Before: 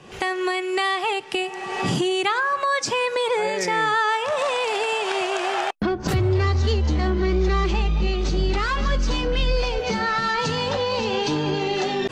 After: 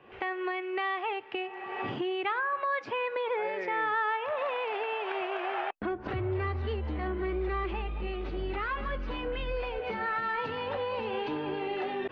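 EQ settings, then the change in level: low-pass 2.7 kHz 24 dB/octave; bass shelf 110 Hz -7.5 dB; peaking EQ 170 Hz -13 dB 0.45 oct; -8.0 dB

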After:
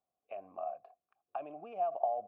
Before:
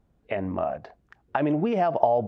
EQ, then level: vowel filter a; -7.0 dB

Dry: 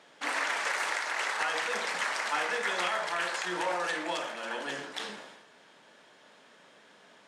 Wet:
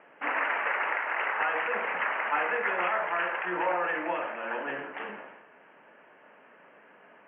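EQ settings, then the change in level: steep low-pass 2.9 kHz 96 dB/octave; distance through air 350 m; bass shelf 190 Hz -10.5 dB; +5.5 dB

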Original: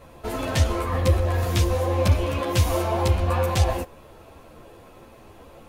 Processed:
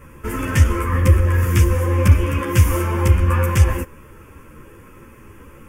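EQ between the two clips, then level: static phaser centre 1.7 kHz, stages 4; +7.5 dB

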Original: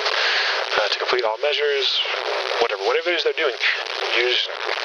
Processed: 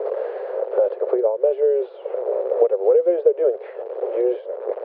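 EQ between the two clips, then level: steep high-pass 250 Hz 96 dB/octave; resonant low-pass 520 Hz, resonance Q 4.9; distance through air 86 m; -5.0 dB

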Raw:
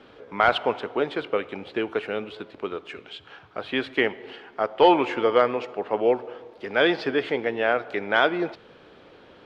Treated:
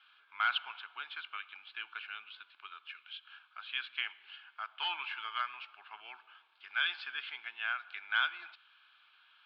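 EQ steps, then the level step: ladder band-pass 2 kHz, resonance 55%; treble shelf 2.6 kHz +10.5 dB; static phaser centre 1.9 kHz, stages 6; +1.5 dB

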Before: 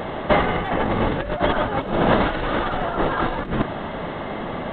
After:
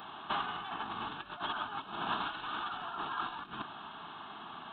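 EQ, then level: high-pass 1.2 kHz 6 dB/octave; static phaser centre 2 kHz, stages 6; -7.5 dB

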